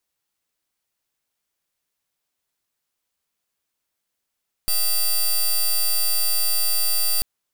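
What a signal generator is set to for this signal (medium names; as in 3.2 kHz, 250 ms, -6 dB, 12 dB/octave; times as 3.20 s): pulse 4.68 kHz, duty 12% -19.5 dBFS 2.54 s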